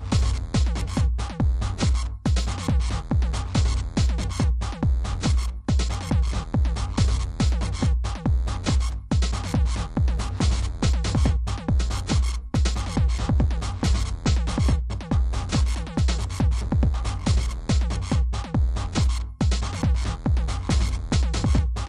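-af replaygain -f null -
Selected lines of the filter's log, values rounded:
track_gain = +8.2 dB
track_peak = 0.269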